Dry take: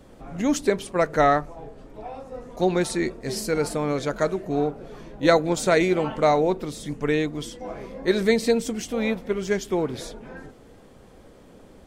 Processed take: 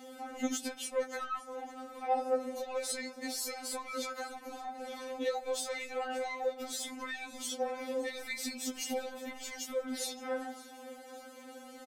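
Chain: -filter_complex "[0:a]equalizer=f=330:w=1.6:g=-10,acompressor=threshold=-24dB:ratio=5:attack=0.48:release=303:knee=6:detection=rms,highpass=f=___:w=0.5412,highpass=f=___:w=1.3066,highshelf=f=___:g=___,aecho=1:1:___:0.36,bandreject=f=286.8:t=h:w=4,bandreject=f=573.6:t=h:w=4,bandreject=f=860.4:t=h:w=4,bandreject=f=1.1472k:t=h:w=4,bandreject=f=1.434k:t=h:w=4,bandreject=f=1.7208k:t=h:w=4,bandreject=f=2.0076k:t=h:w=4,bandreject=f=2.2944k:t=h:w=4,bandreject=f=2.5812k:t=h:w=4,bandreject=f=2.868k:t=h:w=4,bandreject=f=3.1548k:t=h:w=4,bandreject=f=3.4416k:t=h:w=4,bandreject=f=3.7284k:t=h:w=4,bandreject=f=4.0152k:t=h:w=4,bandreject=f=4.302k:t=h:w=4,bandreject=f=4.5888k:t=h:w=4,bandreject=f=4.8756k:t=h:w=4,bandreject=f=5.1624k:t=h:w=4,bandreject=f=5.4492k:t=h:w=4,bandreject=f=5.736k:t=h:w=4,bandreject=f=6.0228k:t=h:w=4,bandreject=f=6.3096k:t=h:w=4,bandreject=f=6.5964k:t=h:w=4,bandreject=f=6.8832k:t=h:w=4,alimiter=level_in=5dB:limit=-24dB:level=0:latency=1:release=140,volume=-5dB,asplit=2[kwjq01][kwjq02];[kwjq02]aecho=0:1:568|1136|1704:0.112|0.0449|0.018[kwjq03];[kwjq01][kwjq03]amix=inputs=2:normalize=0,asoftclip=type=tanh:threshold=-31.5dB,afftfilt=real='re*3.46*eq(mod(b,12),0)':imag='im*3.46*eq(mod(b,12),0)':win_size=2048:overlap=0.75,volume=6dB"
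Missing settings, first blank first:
45, 45, 11k, 7, 5.3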